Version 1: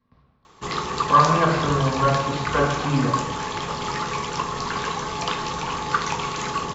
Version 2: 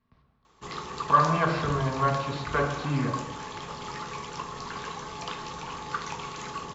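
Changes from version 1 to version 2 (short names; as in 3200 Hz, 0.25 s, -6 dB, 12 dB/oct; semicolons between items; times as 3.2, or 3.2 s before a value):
speech: send -6.5 dB; background -10.0 dB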